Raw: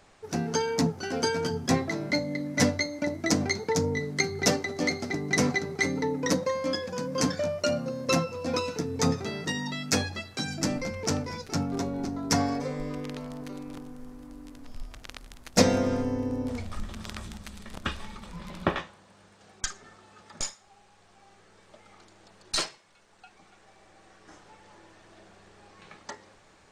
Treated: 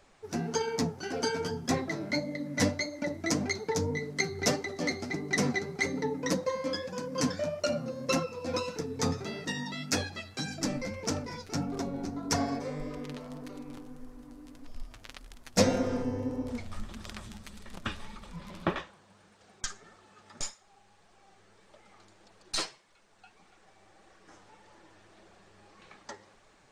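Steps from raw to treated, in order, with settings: flange 1.7 Hz, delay 1.5 ms, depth 9.3 ms, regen +36%

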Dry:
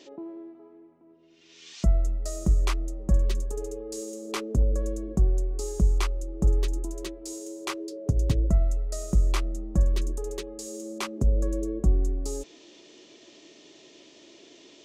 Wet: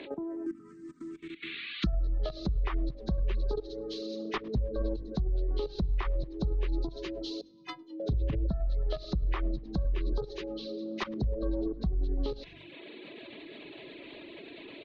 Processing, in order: nonlinear frequency compression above 1400 Hz 1.5:1; in parallel at -7 dB: soft clip -28 dBFS, distortion -6 dB; on the sum: level quantiser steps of 14 dB; 7.41–8 metallic resonator 150 Hz, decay 0.56 s, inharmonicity 0.03; 10.52–10.98 Gaussian blur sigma 2 samples; frequency-shifting echo 0.103 s, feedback 50%, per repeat -49 Hz, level -21.5 dB; treble ducked by the level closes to 790 Hz, closed at -22 dBFS; notches 50/100 Hz; limiter -27.5 dBFS, peak gain reduction 9.5 dB; reverb removal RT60 1 s; 0.46–1.87 EQ curve 100 Hz 0 dB, 330 Hz +8 dB, 750 Hz -30 dB, 1200 Hz +10 dB; three-band squash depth 40%; gain +6.5 dB

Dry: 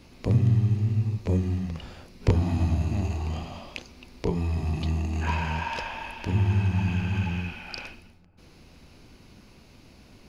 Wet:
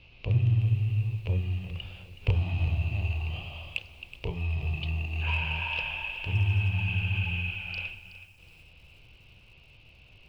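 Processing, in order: EQ curve 130 Hz 0 dB, 230 Hz -17 dB, 510 Hz -5 dB, 1900 Hz -8 dB, 2700 Hz +12 dB, 3900 Hz -4 dB, 8600 Hz -27 dB; in parallel at -5 dB: hard clip -17.5 dBFS, distortion -18 dB; on the sum: lo-fi delay 0.372 s, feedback 35%, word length 8-bit, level -13.5 dB; gain -6 dB

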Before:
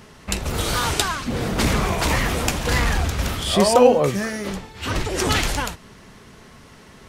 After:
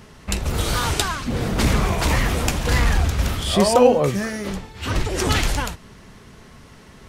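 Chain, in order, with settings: low shelf 140 Hz +5.5 dB; gain -1 dB

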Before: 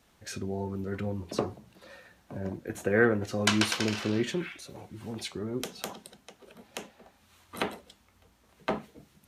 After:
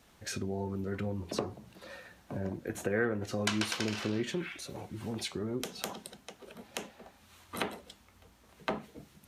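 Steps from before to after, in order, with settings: compressor 2:1, threshold -37 dBFS, peak gain reduction 10.5 dB; gain +2.5 dB

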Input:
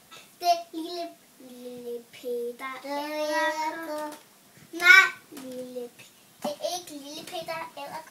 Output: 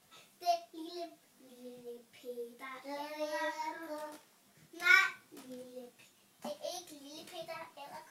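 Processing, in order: detuned doubles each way 25 cents; gain -7 dB

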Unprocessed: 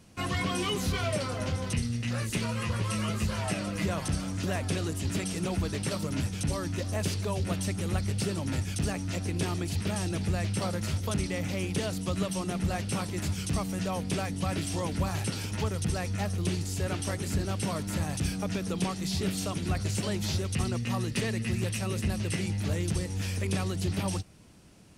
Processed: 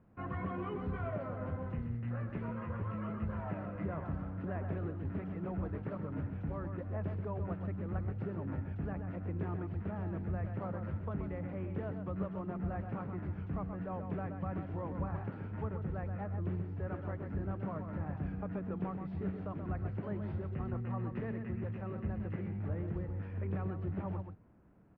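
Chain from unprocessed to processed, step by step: LPF 1600 Hz 24 dB/oct; outdoor echo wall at 22 m, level -7 dB; gain -8 dB

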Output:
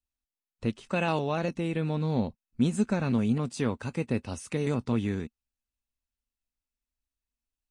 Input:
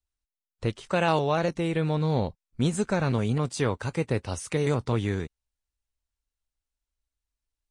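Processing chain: small resonant body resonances 230/2600 Hz, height 11 dB, ringing for 45 ms; gain -5.5 dB

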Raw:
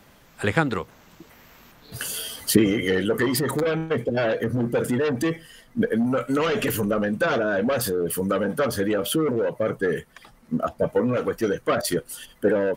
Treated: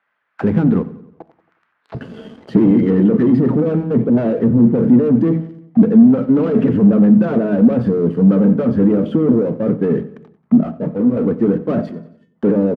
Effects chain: LPF 2900 Hz 12 dB/oct; de-hum 53.67 Hz, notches 7; sample leveller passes 5; auto-wah 210–1600 Hz, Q 2, down, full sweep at -20.5 dBFS; 11.91–12.35 resonator 200 Hz, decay 0.25 s, harmonics odd, mix 90%; feedback echo 91 ms, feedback 53%, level -18 dB; reverb RT60 0.50 s, pre-delay 5 ms, DRR 17.5 dB; 10.63–11.17 detuned doubles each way 48 cents; gain +2 dB

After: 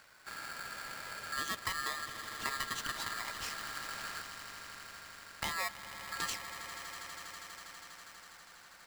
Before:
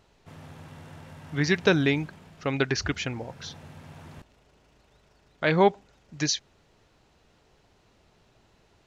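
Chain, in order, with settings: compressor 4:1, threshold -40 dBFS, peak gain reduction 21 dB; on a send: swelling echo 81 ms, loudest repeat 8, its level -15 dB; on the sum: polarity switched at an audio rate 1500 Hz; gain +1.5 dB

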